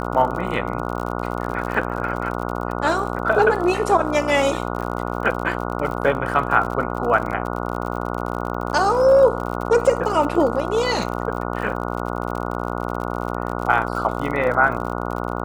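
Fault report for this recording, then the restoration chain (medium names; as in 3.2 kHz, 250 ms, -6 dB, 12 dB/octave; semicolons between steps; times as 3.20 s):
buzz 60 Hz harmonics 24 -26 dBFS
crackle 59 per s -28 dBFS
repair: de-click; de-hum 60 Hz, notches 24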